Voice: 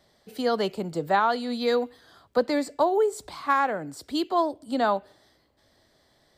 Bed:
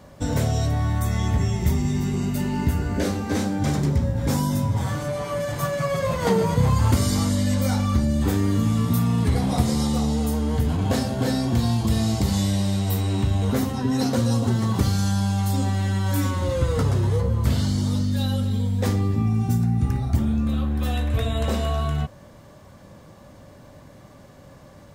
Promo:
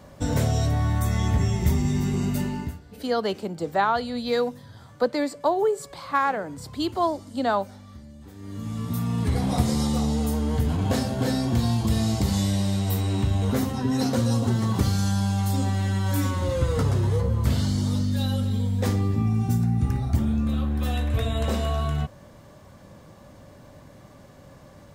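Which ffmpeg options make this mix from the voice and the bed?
-filter_complex "[0:a]adelay=2650,volume=1[s0];[1:a]volume=11.9,afade=t=out:st=2.36:d=0.44:silence=0.0707946,afade=t=in:st=8.35:d=1.17:silence=0.0794328[s1];[s0][s1]amix=inputs=2:normalize=0"

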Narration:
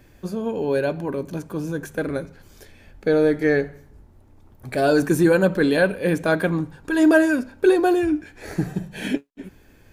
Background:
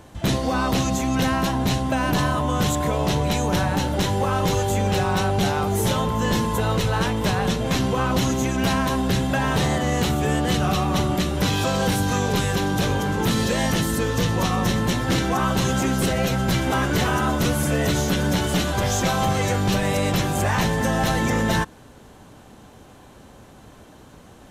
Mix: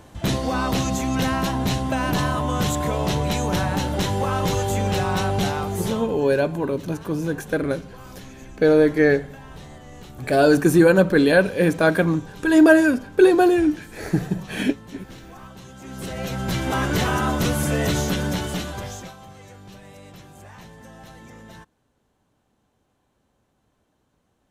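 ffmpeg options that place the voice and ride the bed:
-filter_complex "[0:a]adelay=5550,volume=1.33[s0];[1:a]volume=9.44,afade=t=out:st=5.4:d=0.87:silence=0.1,afade=t=in:st=15.79:d=1.08:silence=0.0944061,afade=t=out:st=17.96:d=1.2:silence=0.0794328[s1];[s0][s1]amix=inputs=2:normalize=0"

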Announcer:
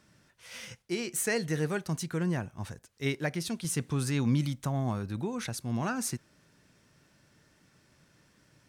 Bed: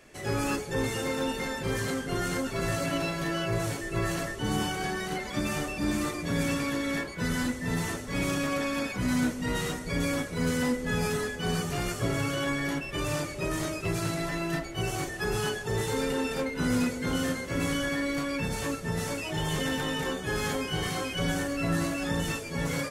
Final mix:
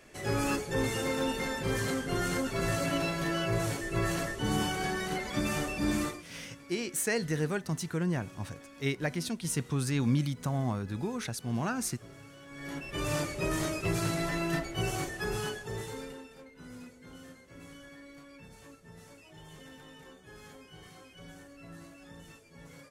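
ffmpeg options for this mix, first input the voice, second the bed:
-filter_complex "[0:a]adelay=5800,volume=0.944[s0];[1:a]volume=10.6,afade=t=out:st=6:d=0.25:silence=0.0891251,afade=t=in:st=12.49:d=0.69:silence=0.0841395,afade=t=out:st=14.73:d=1.55:silence=0.0944061[s1];[s0][s1]amix=inputs=2:normalize=0"

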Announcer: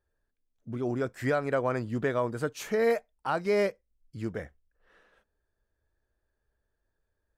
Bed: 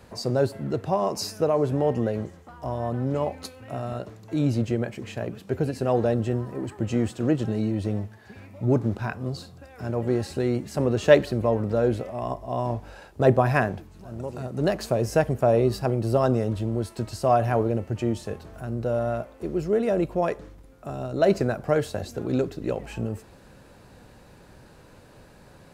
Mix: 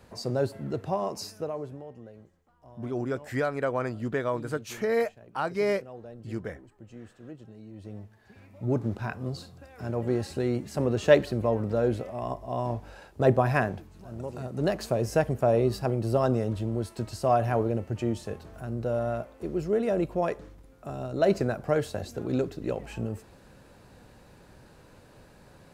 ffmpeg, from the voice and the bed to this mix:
-filter_complex "[0:a]adelay=2100,volume=0.944[s0];[1:a]volume=5.01,afade=t=out:st=0.91:d=0.95:silence=0.141254,afade=t=in:st=7.65:d=1.49:silence=0.11885[s1];[s0][s1]amix=inputs=2:normalize=0"

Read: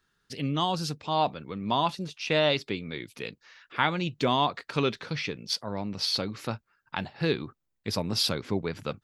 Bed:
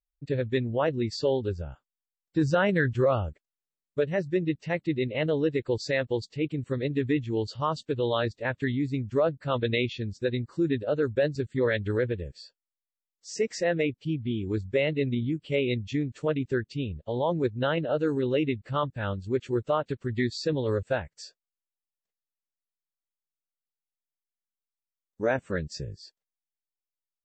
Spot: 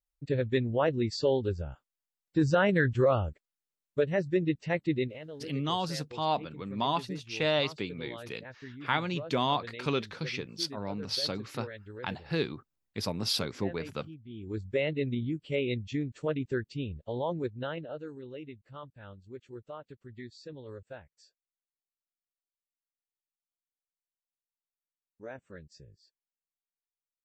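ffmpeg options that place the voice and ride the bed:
-filter_complex "[0:a]adelay=5100,volume=0.668[s0];[1:a]volume=4.22,afade=t=out:st=4.98:d=0.21:silence=0.149624,afade=t=in:st=14.28:d=0.41:silence=0.211349,afade=t=out:st=17.04:d=1.09:silence=0.211349[s1];[s0][s1]amix=inputs=2:normalize=0"

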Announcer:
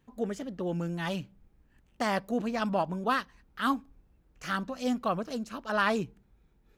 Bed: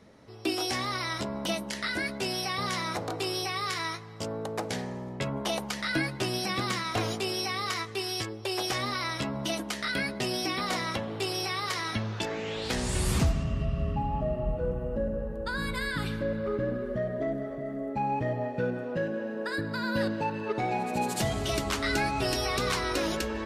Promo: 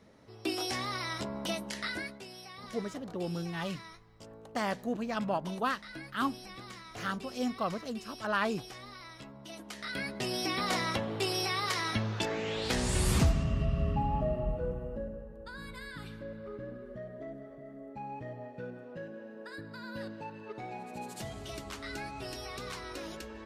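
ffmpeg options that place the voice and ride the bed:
-filter_complex "[0:a]adelay=2550,volume=0.668[s0];[1:a]volume=3.98,afade=t=out:st=1.86:d=0.38:silence=0.237137,afade=t=in:st=9.47:d=1.27:silence=0.158489,afade=t=out:st=14.13:d=1.12:silence=0.251189[s1];[s0][s1]amix=inputs=2:normalize=0"

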